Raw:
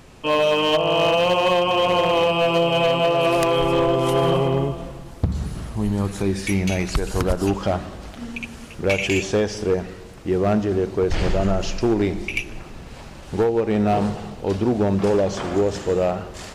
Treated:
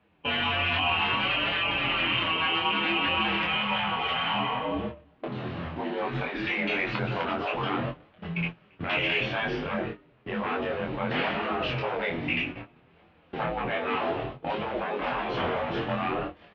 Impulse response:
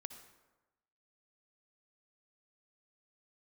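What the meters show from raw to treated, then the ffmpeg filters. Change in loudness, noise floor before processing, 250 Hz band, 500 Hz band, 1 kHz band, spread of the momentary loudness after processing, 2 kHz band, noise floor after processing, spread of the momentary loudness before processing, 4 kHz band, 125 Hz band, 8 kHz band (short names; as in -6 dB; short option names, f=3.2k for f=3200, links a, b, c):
-7.0 dB, -39 dBFS, -10.5 dB, -13.0 dB, -5.0 dB, 10 LU, +1.0 dB, -60 dBFS, 14 LU, -1.5 dB, -11.0 dB, under -30 dB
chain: -filter_complex "[0:a]agate=range=-22dB:threshold=-31dB:ratio=16:detection=peak,afftfilt=real='re*lt(hypot(re,im),0.224)':imag='im*lt(hypot(re,im),0.224)':win_size=1024:overlap=0.75,highshelf=f=2.2k:g=-2,bandreject=f=330.1:t=h:w=4,bandreject=f=660.2:t=h:w=4,bandreject=f=990.3:t=h:w=4,bandreject=f=1.3204k:t=h:w=4,asoftclip=type=tanh:threshold=-25dB,flanger=delay=7.1:depth=6.6:regen=7:speed=0.61:shape=triangular,highpass=f=150:t=q:w=0.5412,highpass=f=150:t=q:w=1.307,lowpass=f=3.2k:t=q:w=0.5176,lowpass=f=3.2k:t=q:w=0.7071,lowpass=f=3.2k:t=q:w=1.932,afreqshift=-62,asplit=2[a][b];[b]adelay=24,volume=-3dB[c];[a][c]amix=inputs=2:normalize=0,crystalizer=i=2:c=0,volume=6dB"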